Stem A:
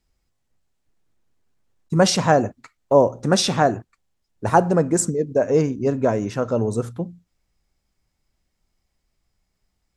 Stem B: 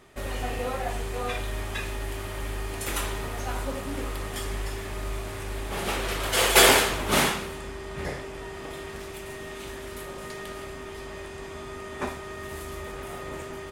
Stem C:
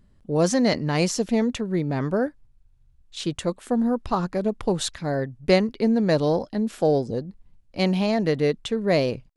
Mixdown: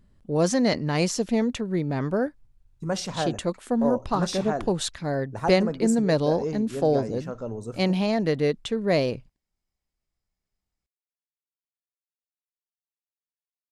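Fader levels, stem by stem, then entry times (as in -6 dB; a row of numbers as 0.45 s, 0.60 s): -12.0 dB, mute, -1.5 dB; 0.90 s, mute, 0.00 s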